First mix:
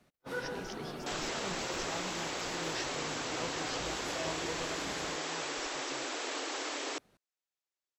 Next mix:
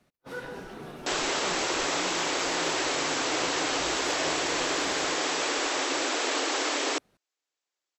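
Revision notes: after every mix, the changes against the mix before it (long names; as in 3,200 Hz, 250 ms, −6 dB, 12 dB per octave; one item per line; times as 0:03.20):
speech: add high-frequency loss of the air 440 metres
second sound +9.5 dB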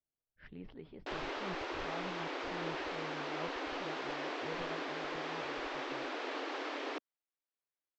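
first sound: muted
second sound −9.0 dB
master: add high-frequency loss of the air 280 metres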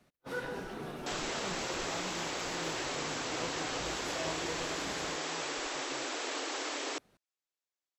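first sound: unmuted
master: remove high-frequency loss of the air 280 metres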